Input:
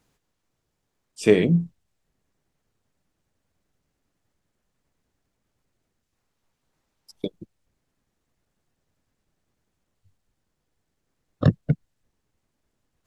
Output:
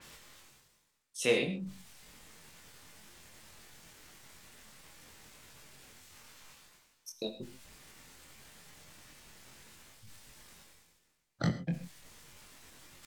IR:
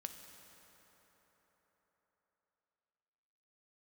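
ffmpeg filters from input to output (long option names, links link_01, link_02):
-filter_complex "[0:a]tiltshelf=frequency=810:gain=-7,bandreject=frequency=640:width=19,areverse,acompressor=mode=upward:threshold=-24dB:ratio=2.5,areverse,asetrate=49501,aresample=44100,atempo=0.890899,asplit=2[link_01][link_02];[link_02]adelay=23,volume=-3.5dB[link_03];[link_01][link_03]amix=inputs=2:normalize=0[link_04];[1:a]atrim=start_sample=2205,afade=type=out:start_time=0.16:duration=0.01,atrim=end_sample=7497,asetrate=35721,aresample=44100[link_05];[link_04][link_05]afir=irnorm=-1:irlink=0,adynamicequalizer=threshold=0.00251:dfrequency=4800:dqfactor=0.7:tfrequency=4800:tqfactor=0.7:attack=5:release=100:ratio=0.375:range=2:mode=cutabove:tftype=highshelf,volume=-6dB"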